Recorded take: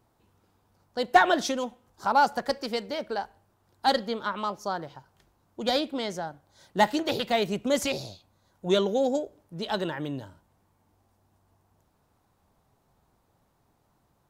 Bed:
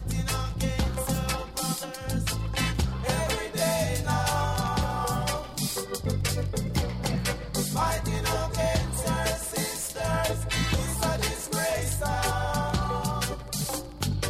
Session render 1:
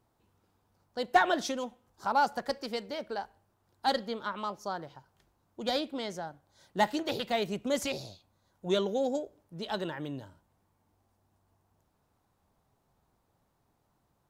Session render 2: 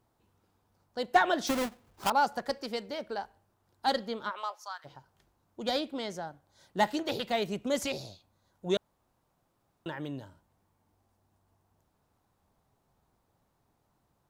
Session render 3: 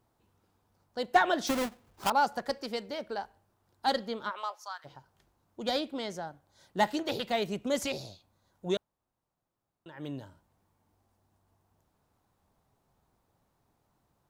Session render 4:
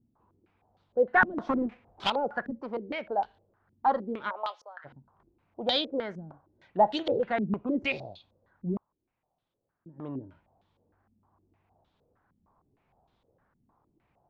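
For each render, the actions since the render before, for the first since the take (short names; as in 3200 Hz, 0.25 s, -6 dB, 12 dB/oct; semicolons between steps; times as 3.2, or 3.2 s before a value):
gain -5 dB
1.47–2.1 half-waves squared off; 4.29–4.84 HPF 390 Hz -> 1300 Hz 24 dB/oct; 8.77–9.86 room tone
8.7–10.08 dip -11.5 dB, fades 0.15 s
soft clip -19.5 dBFS, distortion -15 dB; stepped low-pass 6.5 Hz 230–3500 Hz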